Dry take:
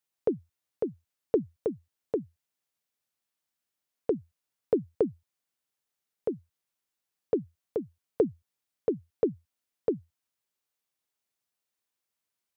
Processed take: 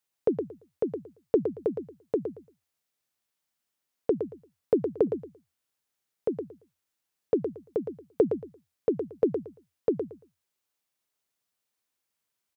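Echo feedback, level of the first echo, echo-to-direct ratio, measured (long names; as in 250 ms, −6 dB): 20%, −7.5 dB, −7.5 dB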